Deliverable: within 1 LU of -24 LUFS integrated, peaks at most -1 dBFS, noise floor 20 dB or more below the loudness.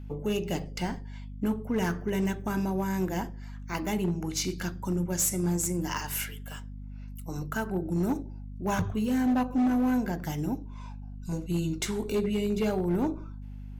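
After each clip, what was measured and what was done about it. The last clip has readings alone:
clipped 1.8%; flat tops at -21.5 dBFS; hum 50 Hz; harmonics up to 250 Hz; hum level -37 dBFS; loudness -30.0 LUFS; peak -21.5 dBFS; loudness target -24.0 LUFS
-> clip repair -21.5 dBFS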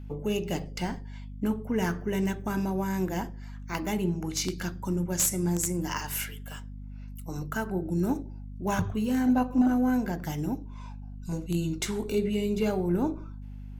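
clipped 0.0%; hum 50 Hz; harmonics up to 250 Hz; hum level -37 dBFS
-> notches 50/100/150/200/250 Hz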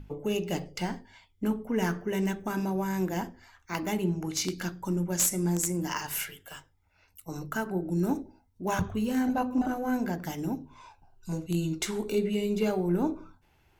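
hum none; loudness -30.5 LUFS; peak -12.0 dBFS; loudness target -24.0 LUFS
-> gain +6.5 dB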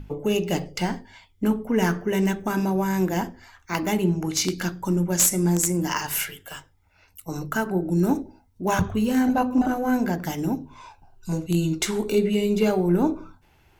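loudness -24.0 LUFS; peak -5.5 dBFS; noise floor -60 dBFS

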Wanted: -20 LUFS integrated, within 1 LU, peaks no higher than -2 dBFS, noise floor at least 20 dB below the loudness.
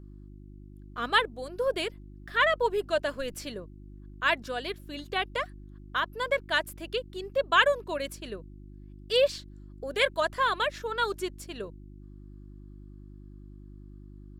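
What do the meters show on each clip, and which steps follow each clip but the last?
hum 50 Hz; harmonics up to 350 Hz; hum level -44 dBFS; loudness -29.0 LUFS; peak -8.0 dBFS; loudness target -20.0 LUFS
-> de-hum 50 Hz, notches 7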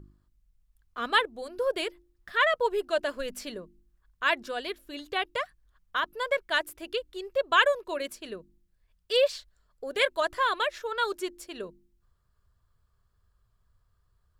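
hum none; loudness -28.5 LUFS; peak -7.5 dBFS; loudness target -20.0 LUFS
-> gain +8.5 dB; limiter -2 dBFS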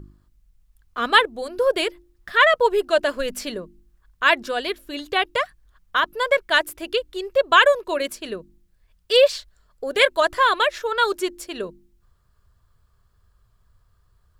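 loudness -20.5 LUFS; peak -2.0 dBFS; noise floor -63 dBFS

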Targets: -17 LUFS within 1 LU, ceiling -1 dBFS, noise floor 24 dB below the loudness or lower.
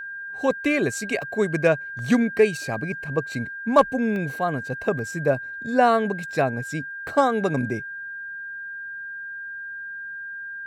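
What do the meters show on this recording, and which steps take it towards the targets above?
dropouts 6; longest dropout 1.1 ms; steady tone 1600 Hz; tone level -32 dBFS; loudness -24.5 LUFS; peak -6.5 dBFS; loudness target -17.0 LUFS
-> interpolate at 1.22/1.99/2.74/4.16/4.99/7.08, 1.1 ms; notch 1600 Hz, Q 30; gain +7.5 dB; limiter -1 dBFS

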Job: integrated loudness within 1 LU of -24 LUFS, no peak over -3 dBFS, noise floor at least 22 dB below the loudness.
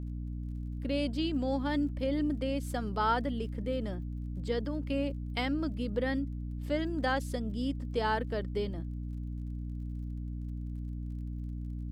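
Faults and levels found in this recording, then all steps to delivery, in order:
ticks 31/s; hum 60 Hz; harmonics up to 300 Hz; hum level -35 dBFS; loudness -34.5 LUFS; peak -16.5 dBFS; loudness target -24.0 LUFS
-> de-click; notches 60/120/180/240/300 Hz; gain +10.5 dB

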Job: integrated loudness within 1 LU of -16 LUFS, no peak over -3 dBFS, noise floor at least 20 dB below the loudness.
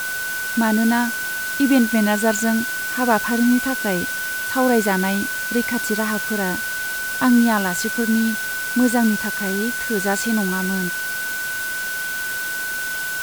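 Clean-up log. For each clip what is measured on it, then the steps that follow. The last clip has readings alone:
steady tone 1500 Hz; tone level -24 dBFS; noise floor -26 dBFS; noise floor target -40 dBFS; loudness -20.0 LUFS; peak -3.5 dBFS; loudness target -16.0 LUFS
-> notch 1500 Hz, Q 30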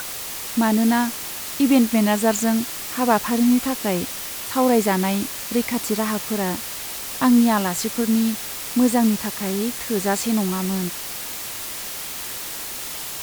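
steady tone none; noise floor -32 dBFS; noise floor target -42 dBFS
-> noise print and reduce 10 dB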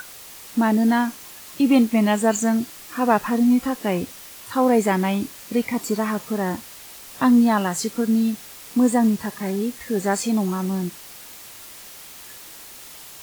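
noise floor -41 dBFS; noise floor target -42 dBFS
-> noise print and reduce 6 dB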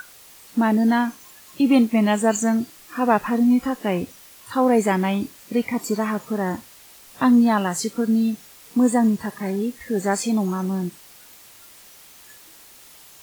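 noise floor -47 dBFS; loudness -21.5 LUFS; peak -4.5 dBFS; loudness target -16.0 LUFS
-> gain +5.5 dB; limiter -3 dBFS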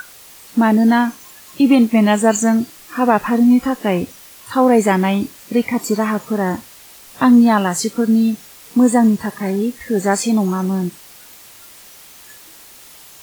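loudness -16.0 LUFS; peak -3.0 dBFS; noise floor -42 dBFS

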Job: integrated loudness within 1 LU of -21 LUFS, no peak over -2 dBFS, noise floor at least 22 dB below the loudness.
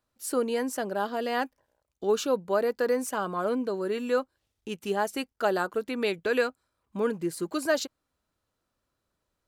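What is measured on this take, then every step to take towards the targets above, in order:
loudness -29.0 LUFS; peak -13.5 dBFS; loudness target -21.0 LUFS
-> gain +8 dB

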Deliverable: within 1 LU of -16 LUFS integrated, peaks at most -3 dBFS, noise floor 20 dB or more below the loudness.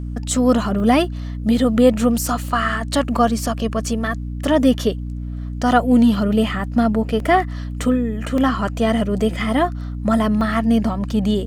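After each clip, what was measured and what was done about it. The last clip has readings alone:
dropouts 8; longest dropout 1.7 ms; hum 60 Hz; harmonics up to 300 Hz; hum level -25 dBFS; loudness -19.0 LUFS; peak -2.5 dBFS; loudness target -16.0 LUFS
-> interpolate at 0.8/2.26/3.28/7.2/8.38/9.21/10.41/11.11, 1.7 ms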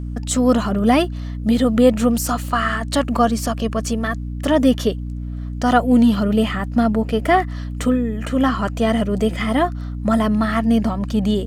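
dropouts 0; hum 60 Hz; harmonics up to 300 Hz; hum level -25 dBFS
-> notches 60/120/180/240/300 Hz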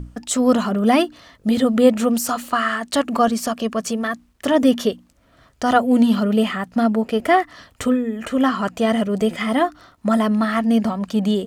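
hum none; loudness -19.5 LUFS; peak -2.0 dBFS; loudness target -16.0 LUFS
-> gain +3.5 dB; limiter -3 dBFS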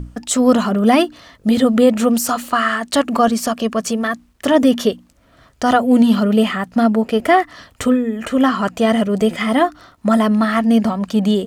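loudness -16.5 LUFS; peak -3.0 dBFS; noise floor -53 dBFS

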